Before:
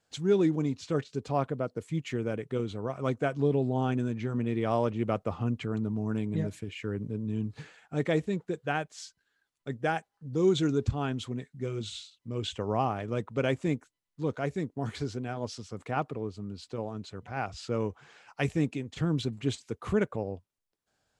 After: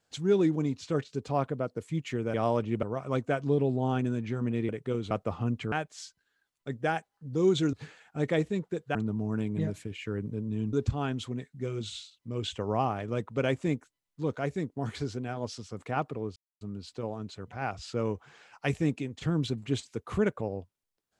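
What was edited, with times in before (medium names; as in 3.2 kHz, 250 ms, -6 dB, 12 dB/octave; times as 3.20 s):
2.34–2.76 s: swap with 4.62–5.11 s
5.72–7.50 s: swap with 8.72–10.73 s
16.36 s: insert silence 0.25 s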